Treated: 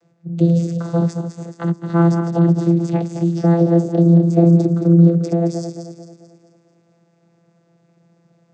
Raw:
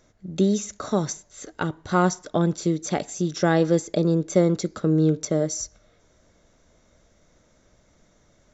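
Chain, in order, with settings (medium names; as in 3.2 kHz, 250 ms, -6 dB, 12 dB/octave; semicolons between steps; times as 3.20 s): backward echo that repeats 110 ms, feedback 67%, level -7 dB; vocoder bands 16, saw 169 Hz; 3.33–5.07 s: dynamic bell 2.2 kHz, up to -8 dB, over -50 dBFS, Q 1.1; trim +8 dB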